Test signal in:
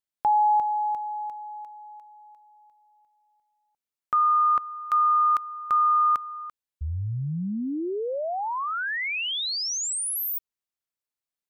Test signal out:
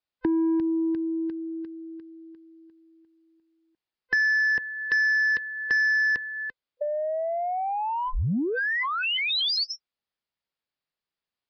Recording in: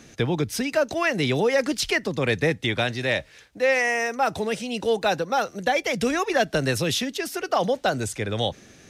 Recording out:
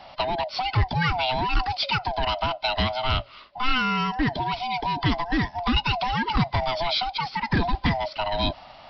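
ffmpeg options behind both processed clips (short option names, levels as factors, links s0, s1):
-filter_complex "[0:a]afftfilt=real='real(if(lt(b,1008),b+24*(1-2*mod(floor(b/24),2)),b),0)':imag='imag(if(lt(b,1008),b+24*(1-2*mod(floor(b/24),2)),b),0)':win_size=2048:overlap=0.75,adynamicequalizer=threshold=0.0251:dfrequency=1700:dqfactor=0.79:tfrequency=1700:tqfactor=0.79:attack=5:release=100:ratio=0.45:range=2:mode=cutabove:tftype=bell,aresample=11025,asoftclip=type=tanh:threshold=0.112,aresample=44100,acrossover=split=240|2100[s0][s1][s2];[s1]acompressor=threshold=0.02:ratio=4:attack=35:release=53:knee=2.83:detection=peak[s3];[s0][s3][s2]amix=inputs=3:normalize=0,volume=1.68"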